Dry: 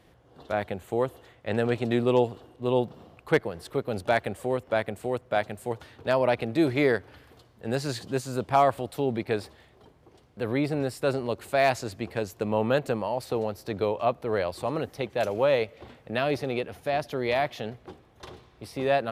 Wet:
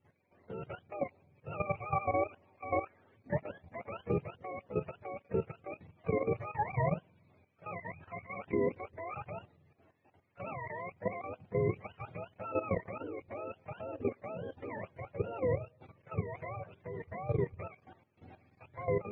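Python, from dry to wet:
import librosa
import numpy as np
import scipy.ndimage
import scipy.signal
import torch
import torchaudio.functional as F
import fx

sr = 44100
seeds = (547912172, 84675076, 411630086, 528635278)

y = fx.octave_mirror(x, sr, pivot_hz=530.0)
y = fx.high_shelf_res(y, sr, hz=3100.0, db=-12.0, q=1.5)
y = fx.level_steps(y, sr, step_db=12)
y = y * librosa.db_to_amplitude(-5.0)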